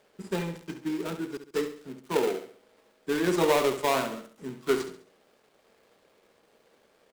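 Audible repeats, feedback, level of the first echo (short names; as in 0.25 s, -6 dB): 4, 39%, -10.0 dB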